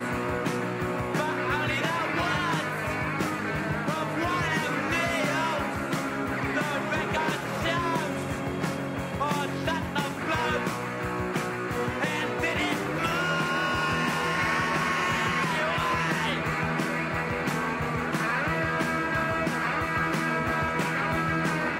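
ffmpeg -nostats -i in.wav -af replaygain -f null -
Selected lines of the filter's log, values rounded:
track_gain = +10.5 dB
track_peak = 0.160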